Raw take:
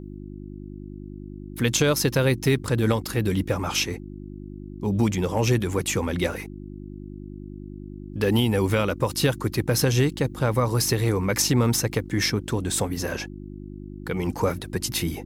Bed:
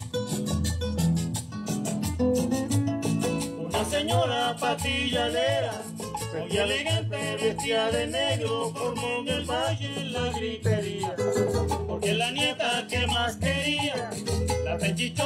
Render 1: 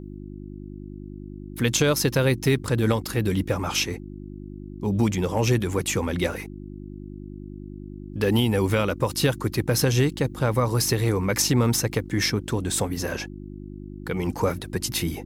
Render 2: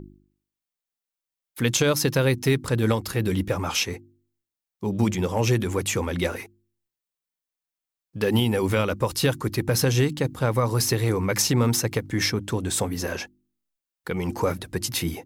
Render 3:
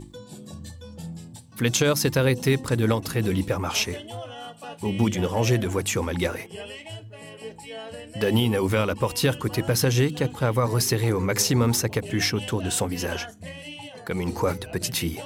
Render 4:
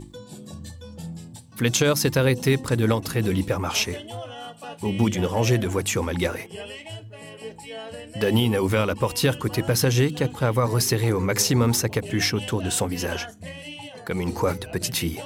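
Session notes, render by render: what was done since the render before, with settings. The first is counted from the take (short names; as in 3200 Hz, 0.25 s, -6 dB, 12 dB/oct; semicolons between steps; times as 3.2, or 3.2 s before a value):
nothing audible
de-hum 50 Hz, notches 7
add bed -12.5 dB
gain +1 dB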